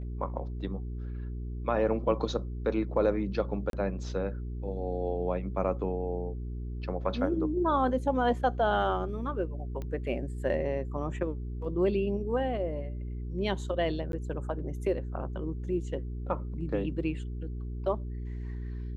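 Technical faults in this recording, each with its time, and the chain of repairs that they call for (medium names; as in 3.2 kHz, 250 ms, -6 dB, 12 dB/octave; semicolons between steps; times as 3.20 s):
hum 60 Hz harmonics 7 -36 dBFS
3.70–3.73 s: dropout 32 ms
9.82 s: pop -26 dBFS
14.12–14.13 s: dropout 12 ms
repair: de-click; de-hum 60 Hz, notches 7; interpolate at 3.70 s, 32 ms; interpolate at 14.12 s, 12 ms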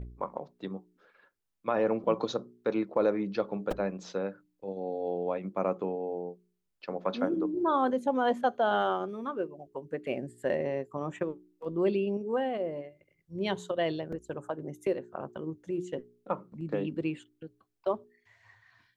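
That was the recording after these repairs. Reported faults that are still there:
nothing left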